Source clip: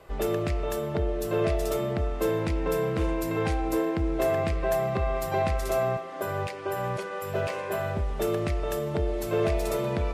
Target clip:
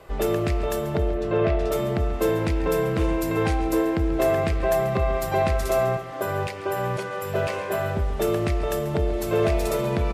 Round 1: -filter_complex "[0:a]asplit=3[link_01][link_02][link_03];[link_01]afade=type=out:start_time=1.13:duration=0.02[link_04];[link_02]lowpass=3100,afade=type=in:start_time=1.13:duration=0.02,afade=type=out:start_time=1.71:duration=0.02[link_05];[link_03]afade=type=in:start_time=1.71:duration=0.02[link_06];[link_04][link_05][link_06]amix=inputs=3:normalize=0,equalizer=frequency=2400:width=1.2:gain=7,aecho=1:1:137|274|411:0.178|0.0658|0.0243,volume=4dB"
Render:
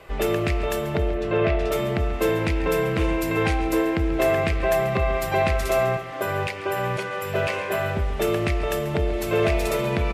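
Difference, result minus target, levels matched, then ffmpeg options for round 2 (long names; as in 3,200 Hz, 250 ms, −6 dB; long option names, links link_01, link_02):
2,000 Hz band +4.0 dB
-filter_complex "[0:a]asplit=3[link_01][link_02][link_03];[link_01]afade=type=out:start_time=1.13:duration=0.02[link_04];[link_02]lowpass=3100,afade=type=in:start_time=1.13:duration=0.02,afade=type=out:start_time=1.71:duration=0.02[link_05];[link_03]afade=type=in:start_time=1.71:duration=0.02[link_06];[link_04][link_05][link_06]amix=inputs=3:normalize=0,aecho=1:1:137|274|411:0.178|0.0658|0.0243,volume=4dB"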